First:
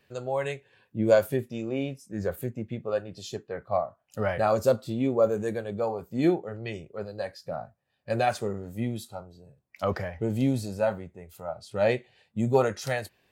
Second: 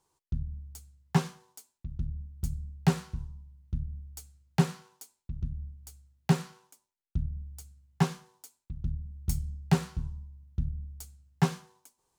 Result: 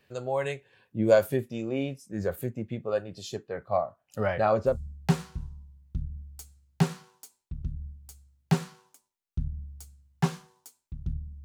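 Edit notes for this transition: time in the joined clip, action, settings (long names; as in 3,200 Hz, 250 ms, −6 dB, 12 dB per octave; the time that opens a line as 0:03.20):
first
0:04.27–0:04.79: low-pass filter 7,500 Hz → 1,600 Hz
0:04.72: continue with second from 0:02.50, crossfade 0.14 s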